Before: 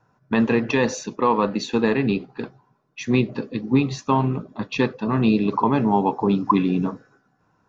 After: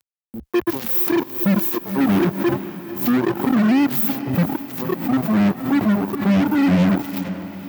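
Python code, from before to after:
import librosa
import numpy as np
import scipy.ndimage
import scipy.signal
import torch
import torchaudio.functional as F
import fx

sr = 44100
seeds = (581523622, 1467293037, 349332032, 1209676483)

p1 = np.sign(x) * np.sqrt(np.mean(np.square(x)))
p2 = fx.peak_eq(p1, sr, hz=350.0, db=-14.5, octaves=2.6)
p3 = fx.small_body(p2, sr, hz=(350.0, 1000.0, 3400.0), ring_ms=75, db=17)
p4 = fx.hpss(p3, sr, part='percussive', gain_db=-13)
p5 = fx.noise_reduce_blind(p4, sr, reduce_db=24)
p6 = fx.dynamic_eq(p5, sr, hz=160.0, q=1.4, threshold_db=-54.0, ratio=4.0, max_db=8)
p7 = scipy.signal.sosfilt(scipy.signal.cheby2(4, 80, [1400.0, 5600.0], 'bandstop', fs=sr, output='sos'), p6)
p8 = fx.fuzz(p7, sr, gain_db=42.0, gate_db=-43.0)
p9 = scipy.signal.sosfilt(scipy.signal.butter(4, 72.0, 'highpass', fs=sr, output='sos'), p8)
p10 = p9 + fx.echo_diffused(p9, sr, ms=481, feedback_pct=57, wet_db=-13, dry=0)
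y = fx.pre_swell(p10, sr, db_per_s=110.0)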